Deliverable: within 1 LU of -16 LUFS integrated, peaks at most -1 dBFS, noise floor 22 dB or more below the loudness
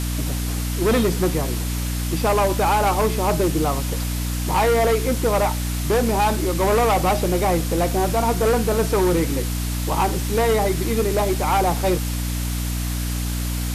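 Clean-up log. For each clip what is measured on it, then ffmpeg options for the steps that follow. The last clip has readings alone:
hum 60 Hz; highest harmonic 300 Hz; hum level -22 dBFS; noise floor -25 dBFS; noise floor target -43 dBFS; loudness -21.0 LUFS; peak level -9.0 dBFS; loudness target -16.0 LUFS
-> -af "bandreject=f=60:t=h:w=4,bandreject=f=120:t=h:w=4,bandreject=f=180:t=h:w=4,bandreject=f=240:t=h:w=4,bandreject=f=300:t=h:w=4"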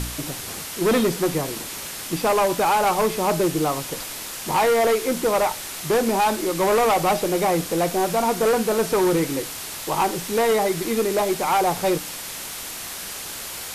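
hum not found; noise floor -34 dBFS; noise floor target -44 dBFS
-> -af "afftdn=nr=10:nf=-34"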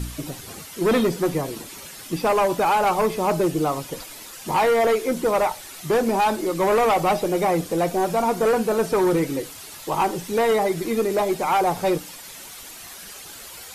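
noise floor -40 dBFS; noise floor target -44 dBFS
-> -af "afftdn=nr=6:nf=-40"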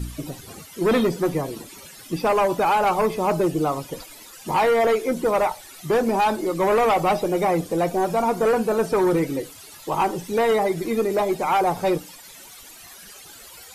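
noise floor -44 dBFS; loudness -22.0 LUFS; peak level -12.5 dBFS; loudness target -16.0 LUFS
-> -af "volume=2"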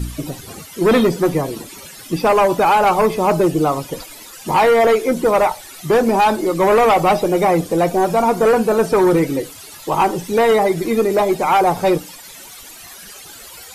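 loudness -16.0 LUFS; peak level -6.5 dBFS; noise floor -38 dBFS

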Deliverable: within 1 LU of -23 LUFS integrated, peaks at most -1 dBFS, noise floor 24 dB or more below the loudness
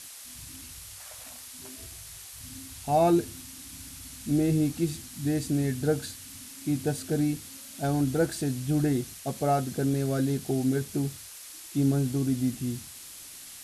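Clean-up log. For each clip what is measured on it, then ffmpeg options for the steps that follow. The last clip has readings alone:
noise floor -45 dBFS; noise floor target -52 dBFS; loudness -28.0 LUFS; peak level -13.0 dBFS; loudness target -23.0 LUFS
-> -af "afftdn=nr=7:nf=-45"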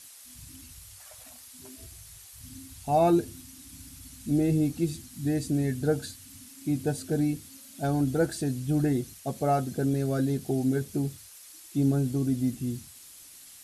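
noise floor -50 dBFS; noise floor target -52 dBFS
-> -af "afftdn=nr=6:nf=-50"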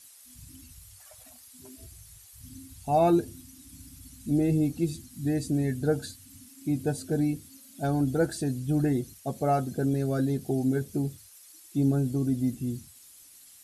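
noise floor -53 dBFS; loudness -28.0 LUFS; peak level -13.0 dBFS; loudness target -23.0 LUFS
-> -af "volume=1.78"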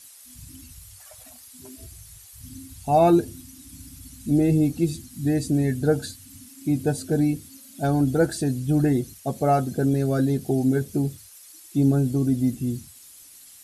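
loudness -23.0 LUFS; peak level -8.0 dBFS; noise floor -48 dBFS

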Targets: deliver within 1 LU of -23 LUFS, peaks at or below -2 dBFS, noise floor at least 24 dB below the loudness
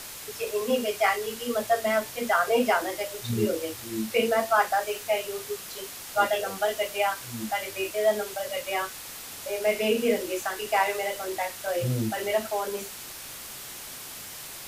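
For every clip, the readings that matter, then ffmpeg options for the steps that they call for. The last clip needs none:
noise floor -41 dBFS; noise floor target -52 dBFS; loudness -28.0 LUFS; peak level -10.0 dBFS; loudness target -23.0 LUFS
-> -af "afftdn=nr=11:nf=-41"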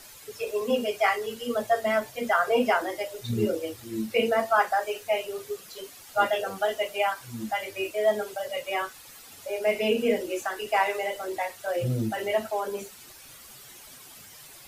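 noise floor -48 dBFS; noise floor target -52 dBFS
-> -af "afftdn=nr=6:nf=-48"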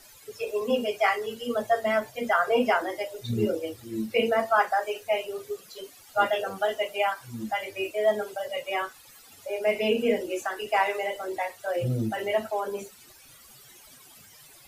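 noise floor -52 dBFS; loudness -27.5 LUFS; peak level -10.0 dBFS; loudness target -23.0 LUFS
-> -af "volume=1.68"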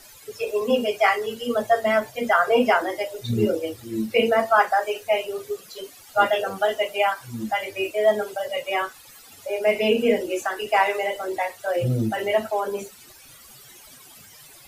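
loudness -23.0 LUFS; peak level -5.5 dBFS; noise floor -48 dBFS

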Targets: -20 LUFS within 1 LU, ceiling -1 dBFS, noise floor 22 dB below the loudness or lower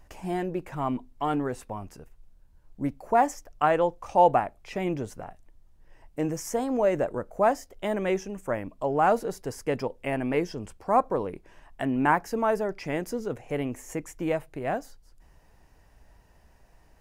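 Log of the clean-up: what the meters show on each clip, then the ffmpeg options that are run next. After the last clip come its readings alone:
loudness -28.0 LUFS; peak level -8.0 dBFS; loudness target -20.0 LUFS
-> -af "volume=2.51,alimiter=limit=0.891:level=0:latency=1"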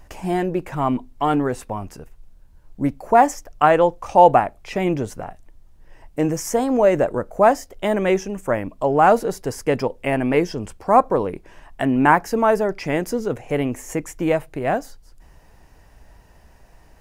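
loudness -20.0 LUFS; peak level -1.0 dBFS; noise floor -51 dBFS

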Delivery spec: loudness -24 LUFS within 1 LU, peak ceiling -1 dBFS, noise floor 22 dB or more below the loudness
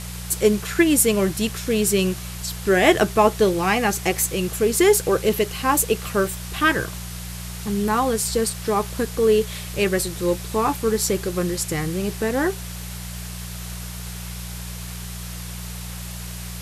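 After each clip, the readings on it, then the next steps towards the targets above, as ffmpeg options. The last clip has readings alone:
hum 60 Hz; highest harmonic 180 Hz; hum level -31 dBFS; noise floor -33 dBFS; noise floor target -43 dBFS; loudness -21.0 LUFS; peak level -3.0 dBFS; loudness target -24.0 LUFS
-> -af "bandreject=f=60:t=h:w=4,bandreject=f=120:t=h:w=4,bandreject=f=180:t=h:w=4"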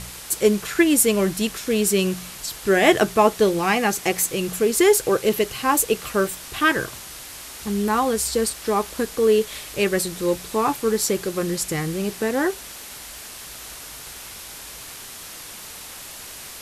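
hum not found; noise floor -38 dBFS; noise floor target -43 dBFS
-> -af "afftdn=nr=6:nf=-38"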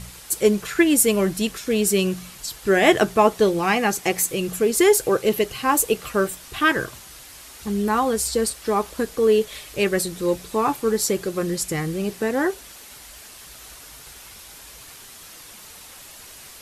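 noise floor -43 dBFS; loudness -21.0 LUFS; peak level -3.0 dBFS; loudness target -24.0 LUFS
-> -af "volume=0.708"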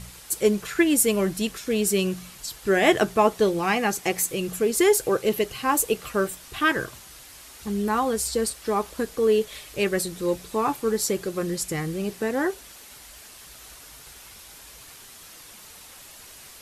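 loudness -24.0 LUFS; peak level -6.0 dBFS; noise floor -46 dBFS

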